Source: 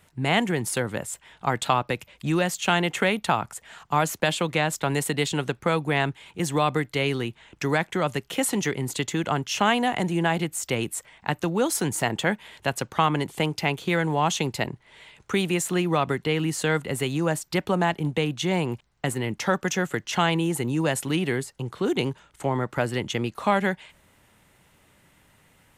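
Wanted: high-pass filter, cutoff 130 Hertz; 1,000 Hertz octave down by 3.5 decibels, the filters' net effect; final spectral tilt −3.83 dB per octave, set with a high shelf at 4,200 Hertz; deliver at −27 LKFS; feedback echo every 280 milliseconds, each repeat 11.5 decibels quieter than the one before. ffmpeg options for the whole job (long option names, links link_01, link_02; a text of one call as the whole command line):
ffmpeg -i in.wav -af "highpass=130,equalizer=frequency=1000:width_type=o:gain=-5,highshelf=frequency=4200:gain=3.5,aecho=1:1:280|560|840:0.266|0.0718|0.0194,volume=-1dB" out.wav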